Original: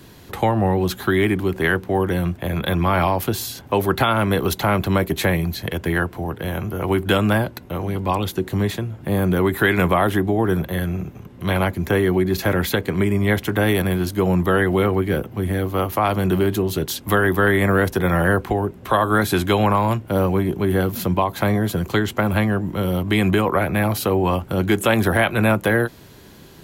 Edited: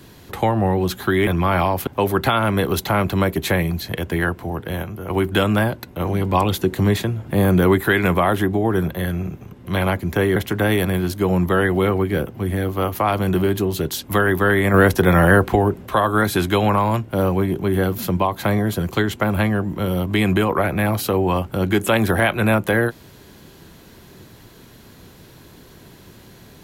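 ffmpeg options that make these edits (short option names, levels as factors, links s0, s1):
-filter_complex "[0:a]asplit=10[s0][s1][s2][s3][s4][s5][s6][s7][s8][s9];[s0]atrim=end=1.272[s10];[s1]atrim=start=2.688:end=3.292[s11];[s2]atrim=start=3.608:end=6.572[s12];[s3]atrim=start=6.568:end=6.842,asetpts=PTS-STARTPTS,volume=0.562[s13];[s4]atrim=start=6.838:end=7.742[s14];[s5]atrim=start=7.738:end=9.522,asetpts=PTS-STARTPTS,volume=1.5[s15];[s6]atrim=start=9.518:end=12.102[s16];[s7]atrim=start=13.328:end=17.712[s17];[s8]atrim=start=17.708:end=18.832,asetpts=PTS-STARTPTS,volume=1.68[s18];[s9]atrim=start=18.828[s19];[s10][s11]acrossfade=d=0.004:c1=hsin:c2=hsin[s20];[s20][s12]acrossfade=d=0.004:c1=hsin:c2=hsin[s21];[s21][s13]acrossfade=d=0.004:c1=hsin:c2=hsin[s22];[s22][s14]acrossfade=d=0.004:c1=hsin:c2=hsin[s23];[s23][s15]acrossfade=d=0.004:c1=hsin:c2=hsin[s24];[s24][s16]acrossfade=d=0.004:c1=hsin:c2=hsin[s25];[s25][s17]acrossfade=d=0.004:c1=hsin:c2=hsin[s26];[s26][s18]acrossfade=d=0.004:c1=hsin:c2=hsin[s27];[s27][s19]acrossfade=d=0.004:c1=hsin:c2=hsin"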